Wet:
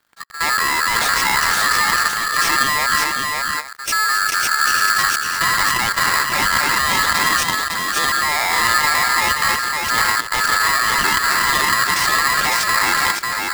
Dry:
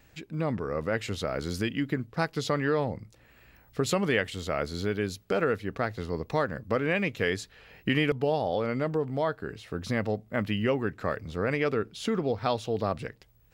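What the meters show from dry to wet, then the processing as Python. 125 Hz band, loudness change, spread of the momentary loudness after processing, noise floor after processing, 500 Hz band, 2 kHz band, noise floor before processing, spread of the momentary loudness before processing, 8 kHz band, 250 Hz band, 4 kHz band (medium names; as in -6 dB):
-3.5 dB, +14.0 dB, 4 LU, -29 dBFS, -4.5 dB, +19.0 dB, -60 dBFS, 7 LU, +25.5 dB, -3.0 dB, +20.0 dB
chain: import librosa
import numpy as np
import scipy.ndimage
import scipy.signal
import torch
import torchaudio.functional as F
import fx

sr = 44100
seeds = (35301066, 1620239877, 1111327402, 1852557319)

y = fx.spec_erase(x, sr, start_s=2.86, length_s=2.13, low_hz=290.0, high_hz=3400.0)
y = y + 10.0 ** (-16.0 / 20.0) * np.pad(y, (int(259 * sr / 1000.0), 0))[:len(y)]
y = fx.leveller(y, sr, passes=5)
y = fx.auto_swell(y, sr, attack_ms=213.0)
y = fx.low_shelf(y, sr, hz=61.0, db=-4.0)
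y = fx.level_steps(y, sr, step_db=12)
y = fx.peak_eq(y, sr, hz=260.0, db=4.0, octaves=2.2)
y = y + 10.0 ** (-3.5 / 20.0) * np.pad(y, (int(556 * sr / 1000.0), 0))[:len(y)]
y = y * np.sign(np.sin(2.0 * np.pi * 1500.0 * np.arange(len(y)) / sr))
y = y * 10.0 ** (3.5 / 20.0)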